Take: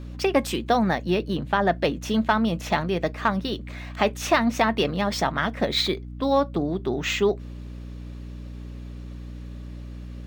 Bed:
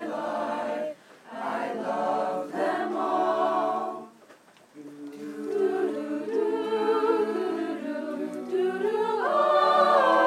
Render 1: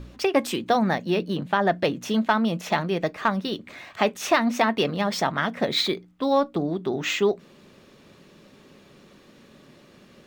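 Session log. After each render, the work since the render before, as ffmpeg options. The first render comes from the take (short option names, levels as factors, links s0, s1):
-af "bandreject=f=60:t=h:w=4,bandreject=f=120:t=h:w=4,bandreject=f=180:t=h:w=4,bandreject=f=240:t=h:w=4,bandreject=f=300:t=h:w=4"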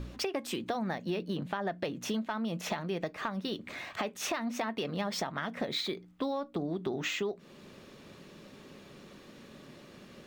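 -af "alimiter=limit=0.15:level=0:latency=1:release=454,acompressor=threshold=0.0282:ratio=5"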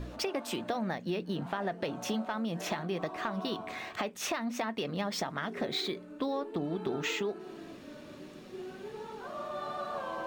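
-filter_complex "[1:a]volume=0.133[s0];[0:a][s0]amix=inputs=2:normalize=0"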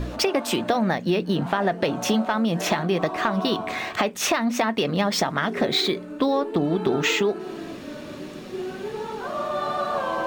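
-af "volume=3.76"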